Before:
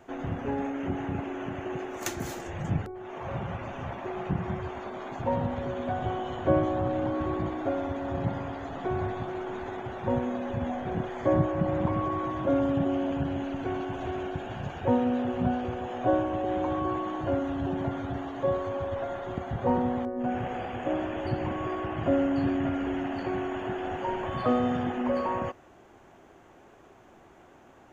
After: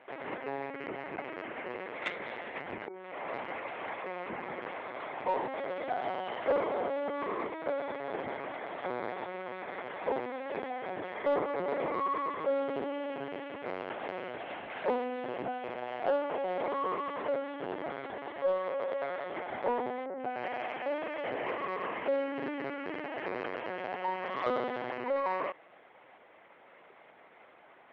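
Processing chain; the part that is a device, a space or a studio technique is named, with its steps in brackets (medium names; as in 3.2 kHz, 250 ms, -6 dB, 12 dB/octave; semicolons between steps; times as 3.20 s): talking toy (LPC vocoder at 8 kHz pitch kept; high-pass 420 Hz 12 dB/octave; peaking EQ 2.1 kHz +10 dB 0.31 oct; saturation -20.5 dBFS, distortion -20 dB)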